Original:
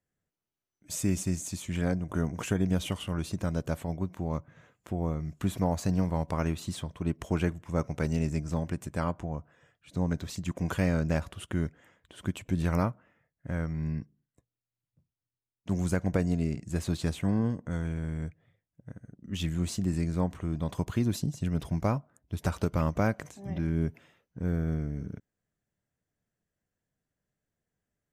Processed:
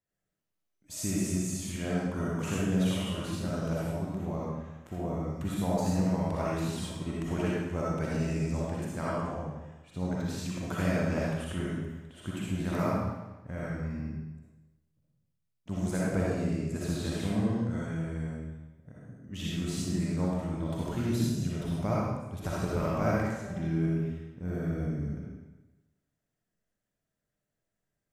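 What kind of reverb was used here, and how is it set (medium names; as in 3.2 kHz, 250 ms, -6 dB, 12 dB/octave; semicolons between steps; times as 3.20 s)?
algorithmic reverb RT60 1.1 s, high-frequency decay 0.95×, pre-delay 20 ms, DRR -6.5 dB; trim -6.5 dB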